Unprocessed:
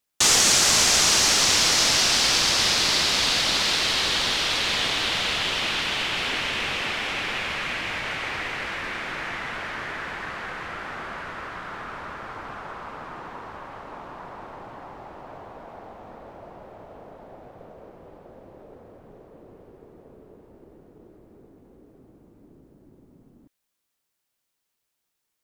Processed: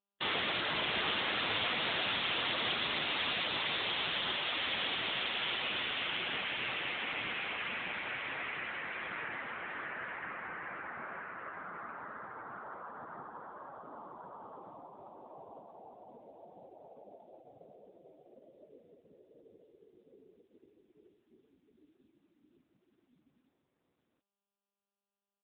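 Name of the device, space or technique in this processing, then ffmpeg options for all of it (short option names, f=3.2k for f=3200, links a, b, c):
mobile call with aggressive noise cancelling: -filter_complex "[0:a]asplit=3[a][b][c];[a]afade=t=out:st=14.67:d=0.02[d];[b]equalizer=f=5.9k:w=0.34:g=-5,afade=t=in:st=14.67:d=0.02,afade=t=out:st=16.7:d=0.02[e];[c]afade=t=in:st=16.7:d=0.02[f];[d][e][f]amix=inputs=3:normalize=0,highpass=110,aecho=1:1:49|723:0.316|0.473,afftdn=nr=25:nf=-37,volume=-8dB" -ar 8000 -c:a libopencore_amrnb -b:a 10200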